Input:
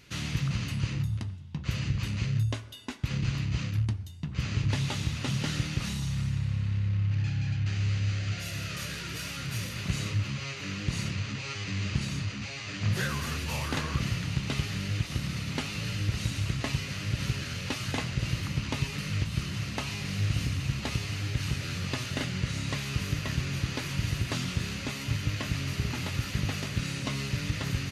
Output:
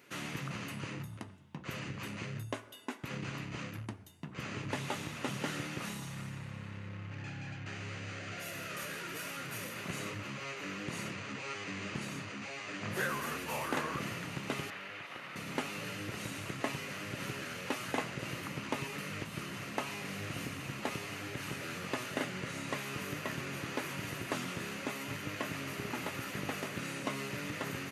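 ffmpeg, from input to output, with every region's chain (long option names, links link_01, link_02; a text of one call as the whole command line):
ffmpeg -i in.wav -filter_complex "[0:a]asettb=1/sr,asplit=3[link_01][link_02][link_03];[link_01]atrim=end=14.704[link_04];[link_02]atrim=start=14.7:end=15.36,asetpts=PTS-STARTPTS,afade=type=in:duration=0.004:curve=qsin,afade=type=out:start_time=0.656:duration=0.004:curve=qsin,acrossover=split=530 3800:gain=0.178 1 0.158[link_05][link_06][link_07];[link_05][link_06][link_07]amix=inputs=3:normalize=0,asplit=2[link_08][link_09];[link_09]adelay=37,volume=-13dB[link_10];[link_08][link_10]amix=inputs=2:normalize=0,atrim=end_sample=29106[link_11];[link_03]atrim=start=15.356[link_12];[link_04][link_11]acrossfade=duration=0.004:curve1=hsin:curve2=qsin[link_13];[link_13][link_12]acrossfade=duration=0.004:curve1=qsin:curve2=hsin,highpass=330,equalizer=frequency=4500:width_type=o:width=1.7:gain=-13,volume=2.5dB" out.wav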